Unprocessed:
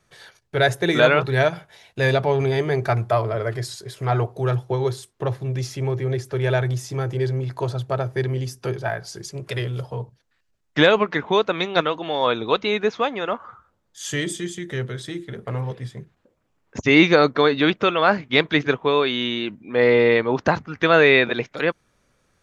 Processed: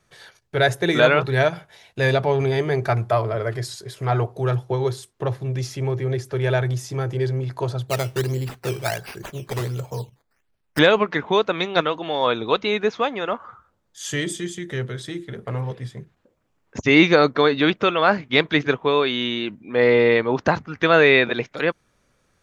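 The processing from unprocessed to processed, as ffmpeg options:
-filter_complex "[0:a]asettb=1/sr,asplit=3[a][b][c];[a]atrim=end=7.884[d];[b]atrim=start=7.88:end=10.79,asetpts=PTS-STARTPTS,afade=t=in:d=0.004:c=qsin,afade=t=out:st=2.906:d=0.004:c=qsin,acrusher=samples=11:mix=1:aa=0.000001:lfo=1:lforange=11:lforate=1.4[e];[c]atrim=start=10.786[f];[d][e]acrossfade=d=0.004:c1=hsin:c2=qsin[g];[g][f]acrossfade=d=0.004:c1=qsin:c2=hsin"

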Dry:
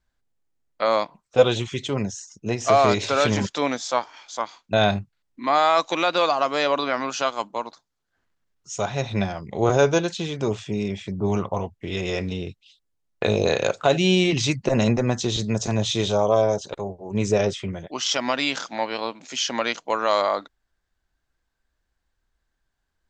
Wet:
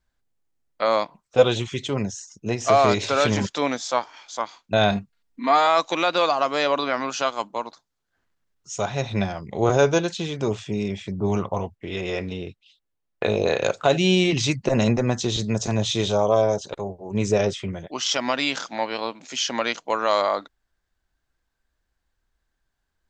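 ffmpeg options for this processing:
-filter_complex "[0:a]asettb=1/sr,asplit=3[a][b][c];[a]atrim=end=4.914[d];[b]atrim=start=4.91:end=5.67,asetpts=PTS-STARTPTS,afade=t=in:d=0.004:c=qsin,afade=t=out:st=0.756:d=0.004:c=qsin,aecho=1:1:4.3:0.65,atrim=end_sample=33516[e];[c]atrim=start=5.666[f];[d][e]acrossfade=d=0.004:c1=hsin:c2=qsin[g];[g][f]acrossfade=d=0.004:c1=qsin:c2=hsin,asettb=1/sr,asplit=3[h][i][j];[h]atrim=end=11.754[k];[i]atrim=start=11.75:end=13.63,asetpts=PTS-STARTPTS,afade=t=in:d=0.004:c=qsin,afade=t=out:st=1.876:d=0.004:c=qsin,bass=f=250:g=-4,treble=f=4k:g=-7[l];[j]atrim=start=13.626[m];[k][l]acrossfade=d=0.004:c1=hsin:c2=qsin[n];[n][m]acrossfade=d=0.004:c1=qsin:c2=hsin"

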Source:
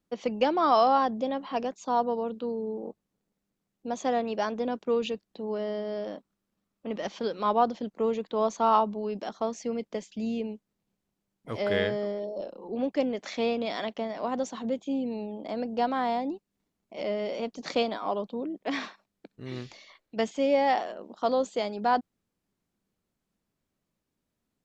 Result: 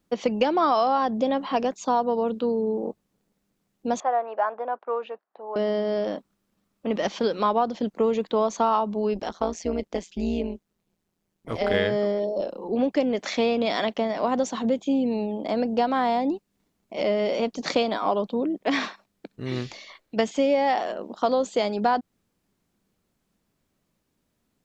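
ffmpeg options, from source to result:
-filter_complex "[0:a]asettb=1/sr,asplit=3[a][b][c];[a]atrim=end=4.004[d];[b]atrim=start=4:end=5.56,asetpts=PTS-STARTPTS,afade=t=in:d=0.004:c=qsin,afade=t=out:st=1.556:d=0.004:c=qsin,asuperpass=centerf=980:order=4:qfactor=1.1[e];[c]atrim=start=5.556[f];[d][e]acrossfade=d=0.004:c1=hsin:c2=qsin[g];[g][f]acrossfade=d=0.004:c1=qsin:c2=hsin,asplit=3[h][i][j];[h]afade=t=out:st=9.13:d=0.02[k];[i]tremolo=f=170:d=0.788,afade=t=in:st=9.13:d=0.02,afade=t=out:st=11.73:d=0.02[l];[j]afade=t=in:st=11.73:d=0.02[m];[k][l][m]amix=inputs=3:normalize=0,acompressor=threshold=-26dB:ratio=6,volume=8dB"

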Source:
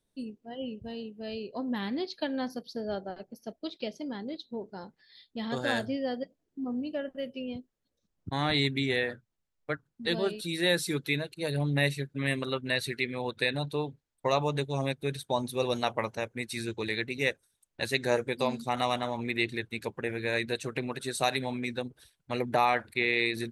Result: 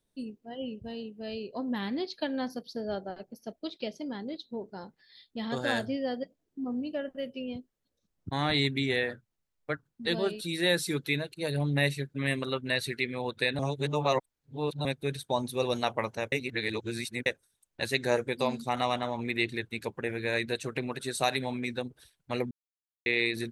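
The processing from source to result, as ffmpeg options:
-filter_complex "[0:a]asettb=1/sr,asplit=3[a][b][c];[a]atrim=end=18.784[d];[b]atrim=start=18.78:end=19.19,asetpts=PTS-STARTPTS,afade=t=in:d=0.004:c=qsin,afade=t=out:st=0.406:d=0.004:c=qsin,highshelf=f=9.5k:g=-10.5[e];[c]atrim=start=19.186[f];[d][e]acrossfade=d=0.004:c1=hsin:c2=qsin[g];[g][f]acrossfade=d=0.004:c1=qsin:c2=hsin,asplit=7[h][i][j][k][l][m][n];[h]atrim=end=13.592[o];[i]atrim=start=13.588:end=14.852,asetpts=PTS-STARTPTS,areverse[p];[j]atrim=start=14.848:end=16.322[q];[k]atrim=start=16.318:end=17.262,asetpts=PTS-STARTPTS,areverse[r];[l]atrim=start=17.258:end=22.51,asetpts=PTS-STARTPTS,afade=t=out:st=5.248:d=0.004:c=hsin[s];[m]atrim=start=22.51:end=23.06,asetpts=PTS-STARTPTS,volume=0[t];[n]atrim=start=23.06,asetpts=PTS-STARTPTS,afade=t=in:d=0.004:c=hsin[u];[o][p]acrossfade=d=0.004:c1=hsin:c2=hsin[v];[v][q]acrossfade=d=0.004:c1=hsin:c2=hsin[w];[w][r]acrossfade=d=0.004:c1=hsin:c2=hsin[x];[s][t][u]concat=n=3:v=0:a=1[y];[x][y]acrossfade=d=0.004:c1=hsin:c2=hsin"

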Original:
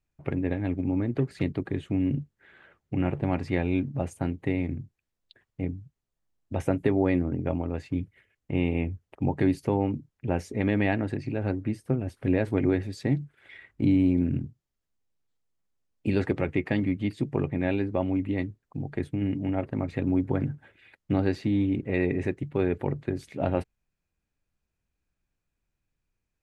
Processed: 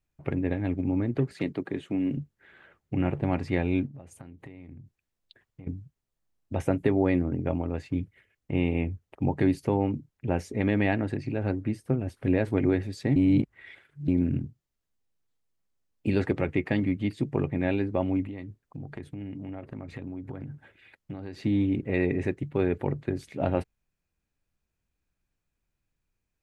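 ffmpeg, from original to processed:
-filter_complex "[0:a]asettb=1/sr,asplit=3[a][b][c];[a]atrim=end=1.334[d];[b]atrim=start=1.33:end=2.17,asetpts=PTS-STARTPTS,afade=t=in:d=0.004:c=qsin,afade=t=out:st=0.836:d=0.004:c=qsin,highpass=190[e];[c]atrim=start=2.166[f];[d][e]acrossfade=d=0.004:c1=hsin:c2=qsin[g];[g][f]acrossfade=d=0.004:c1=qsin:c2=hsin,asettb=1/sr,asplit=3[h][i][j];[h]atrim=end=3.864[k];[i]atrim=start=3.86:end=5.67,asetpts=PTS-STARTPTS,afade=t=in:d=0.004:c=qsin,afade=t=out:st=1.806:d=0.004:c=qsin,acompressor=threshold=-41dB:ratio=10:attack=3.2:release=140:knee=1:detection=peak[l];[j]atrim=start=5.666[m];[k][l]acrossfade=d=0.004:c1=hsin:c2=qsin[n];[n][m]acrossfade=d=0.004:c1=qsin:c2=hsin,asettb=1/sr,asplit=3[o][p][q];[o]atrim=end=18.244[r];[p]atrim=start=18.24:end=21.42,asetpts=PTS-STARTPTS,afade=t=in:d=0.004:c=qsin,afade=t=out:st=3.176:d=0.004:c=qsin,acompressor=threshold=-34dB:ratio=6:attack=3.2:release=140:knee=1:detection=peak[s];[q]atrim=start=21.416[t];[r][s]acrossfade=d=0.004:c1=hsin:c2=qsin[u];[u][t]acrossfade=d=0.004:c1=qsin:c2=hsin,asplit=3[v][w][x];[v]atrim=end=13.162[y];[w]atrim=start=13.158:end=14.082,asetpts=PTS-STARTPTS,areverse[z];[x]atrim=start=14.078[aa];[y][z]acrossfade=d=0.004:c1=hsin:c2=hsin[ab];[ab][aa]acrossfade=d=0.004:c1=hsin:c2=hsin"

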